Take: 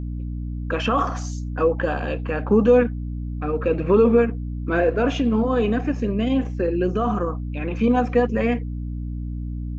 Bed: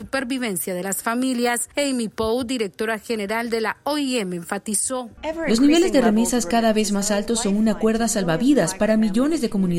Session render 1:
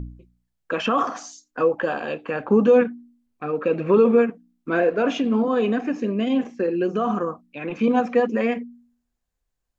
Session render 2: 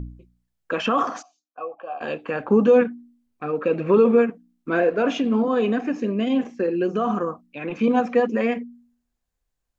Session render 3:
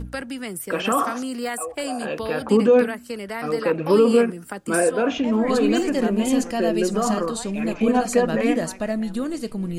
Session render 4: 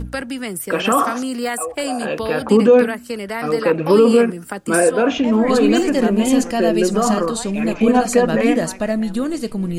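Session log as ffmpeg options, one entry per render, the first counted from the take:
-af "bandreject=f=60:t=h:w=4,bandreject=f=120:t=h:w=4,bandreject=f=180:t=h:w=4,bandreject=f=240:t=h:w=4,bandreject=f=300:t=h:w=4"
-filter_complex "[0:a]asplit=3[a][b][c];[a]afade=t=out:st=1.21:d=0.02[d];[b]asplit=3[e][f][g];[e]bandpass=f=730:t=q:w=8,volume=0dB[h];[f]bandpass=f=1.09k:t=q:w=8,volume=-6dB[i];[g]bandpass=f=2.44k:t=q:w=8,volume=-9dB[j];[h][i][j]amix=inputs=3:normalize=0,afade=t=in:st=1.21:d=0.02,afade=t=out:st=2:d=0.02[k];[c]afade=t=in:st=2:d=0.02[l];[d][k][l]amix=inputs=3:normalize=0"
-filter_complex "[1:a]volume=-7dB[a];[0:a][a]amix=inputs=2:normalize=0"
-af "volume=5dB,alimiter=limit=-3dB:level=0:latency=1"

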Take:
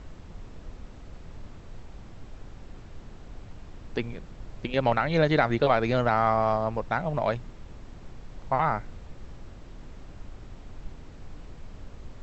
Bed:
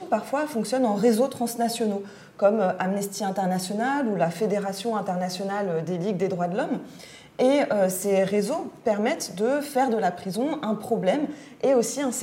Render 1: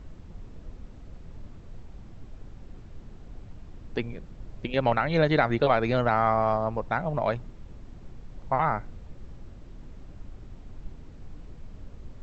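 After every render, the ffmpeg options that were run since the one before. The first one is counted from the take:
-af "afftdn=nr=6:nf=-46"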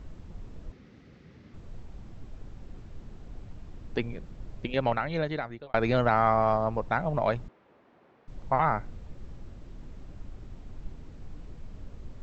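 -filter_complex "[0:a]asettb=1/sr,asplit=3[a][b][c];[a]atrim=end=0.724[d];[b]atrim=start=0.72:end=1.54,asetpts=PTS-STARTPTS,afade=t=in:d=0.004:c=qsin,afade=t=out:st=0.816:d=0.004:c=qsin,highpass=140,equalizer=f=650:t=q:w=4:g=-8,equalizer=f=950:t=q:w=4:g=-7,equalizer=f=2k:t=q:w=4:g=6,lowpass=f=5.8k:w=0.5412,lowpass=f=5.8k:w=1.3066[e];[c]atrim=start=1.536[f];[d][e]acrossfade=d=0.004:c1=hsin:c2=qsin[g];[g][f]acrossfade=d=0.004:c1=qsin:c2=hsin,asettb=1/sr,asplit=3[h][i][j];[h]atrim=end=7.484[k];[i]atrim=start=7.48:end=8.28,asetpts=PTS-STARTPTS,afade=t=in:d=0.004:c=qsin,afade=t=out:st=0.796:d=0.004:c=qsin,highpass=470,lowpass=2.2k[l];[j]atrim=start=8.276[m];[k][l]acrossfade=d=0.004:c1=hsin:c2=qsin[n];[n][m]acrossfade=d=0.004:c1=qsin:c2=hsin,asplit=2[o][p];[o]atrim=end=5.74,asetpts=PTS-STARTPTS,afade=t=out:st=4.52:d=1.22[q];[p]atrim=start=5.74,asetpts=PTS-STARTPTS,afade=t=in:d=0.004:c=hsin[r];[q][r]concat=n=2:v=0:a=1"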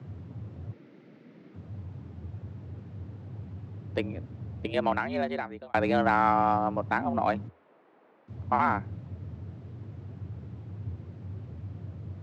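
-af "afreqshift=83,adynamicsmooth=sensitivity=2:basefreq=4.2k"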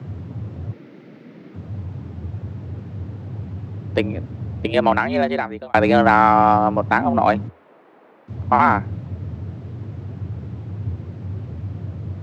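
-af "volume=10.5dB,alimiter=limit=-2dB:level=0:latency=1"

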